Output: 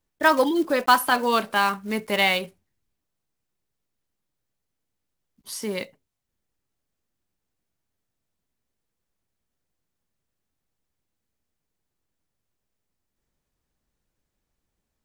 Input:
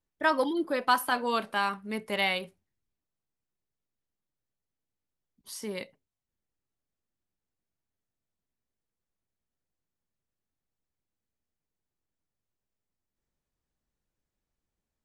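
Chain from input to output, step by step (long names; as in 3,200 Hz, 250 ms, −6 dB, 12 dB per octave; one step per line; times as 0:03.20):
one scale factor per block 5 bits
level +7 dB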